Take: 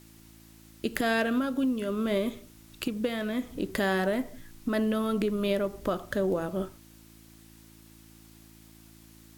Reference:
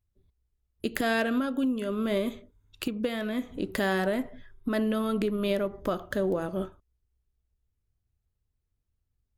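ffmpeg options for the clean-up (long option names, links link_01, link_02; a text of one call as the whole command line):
ffmpeg -i in.wav -af "bandreject=frequency=55.2:width_type=h:width=4,bandreject=frequency=110.4:width_type=h:width=4,bandreject=frequency=165.6:width_type=h:width=4,bandreject=frequency=220.8:width_type=h:width=4,bandreject=frequency=276:width_type=h:width=4,bandreject=frequency=331.2:width_type=h:width=4,agate=range=-21dB:threshold=-46dB" out.wav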